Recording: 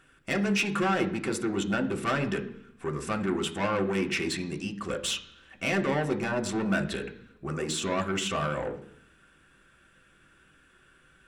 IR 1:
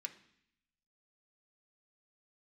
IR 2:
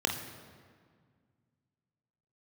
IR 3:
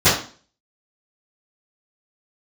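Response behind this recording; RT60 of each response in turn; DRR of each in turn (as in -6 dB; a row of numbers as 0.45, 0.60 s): 1; 0.65, 1.9, 0.40 s; 3.5, 2.5, -21.5 dB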